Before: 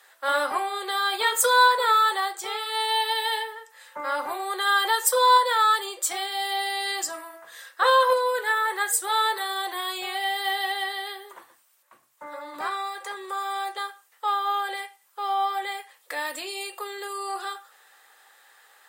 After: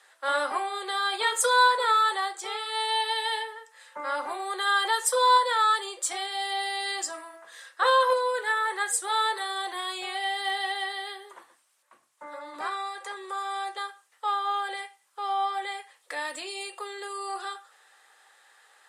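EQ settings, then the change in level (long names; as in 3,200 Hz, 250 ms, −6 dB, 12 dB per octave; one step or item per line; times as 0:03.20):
high-pass filter 170 Hz
low-pass filter 11,000 Hz 24 dB per octave
−2.5 dB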